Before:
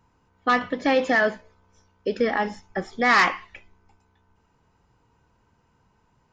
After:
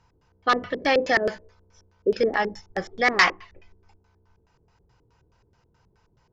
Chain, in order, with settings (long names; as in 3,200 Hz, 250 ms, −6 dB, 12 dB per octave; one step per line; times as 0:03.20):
auto-filter low-pass square 4.7 Hz 370–5,100 Hz
octave-band graphic EQ 250/1,000/4,000 Hz −10/−3/−4 dB
level +3 dB